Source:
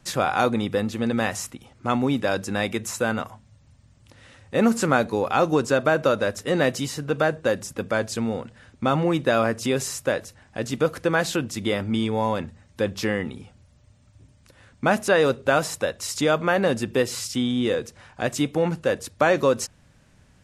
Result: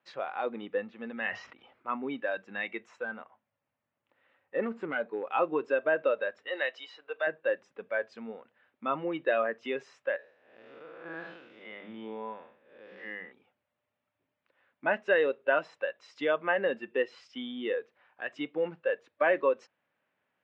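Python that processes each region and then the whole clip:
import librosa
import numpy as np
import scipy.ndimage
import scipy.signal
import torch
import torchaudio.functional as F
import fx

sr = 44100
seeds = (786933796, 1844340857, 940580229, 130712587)

y = fx.chain(x, sr, fx.env_lowpass_down(base_hz=2500.0, full_db=-20.5),
    fx.lowpass(hz=6500.0, slope=24),
    fx.sustainer(db_per_s=43.0), at=(1.23, 2.03))
y = fx.chain(y, sr, fx.high_shelf(hz=2800.0, db=-7.0),
    fx.overload_stage(gain_db=14.5), at=(3.03, 5.27))
y = fx.chain(y, sr, fx.highpass(hz=500.0, slope=12),
    fx.peak_eq(hz=3900.0, db=4.5, octaves=0.48), at=(6.47, 7.27))
y = fx.chain(y, sr, fx.spec_blur(span_ms=234.0),
    fx.hum_notches(base_hz=50, count=6), at=(10.16, 13.32))
y = scipy.signal.sosfilt(scipy.signal.butter(4, 2900.0, 'lowpass', fs=sr, output='sos'), y)
y = fx.noise_reduce_blind(y, sr, reduce_db=11)
y = scipy.signal.sosfilt(scipy.signal.butter(2, 470.0, 'highpass', fs=sr, output='sos'), y)
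y = F.gain(torch.from_numpy(y), -3.5).numpy()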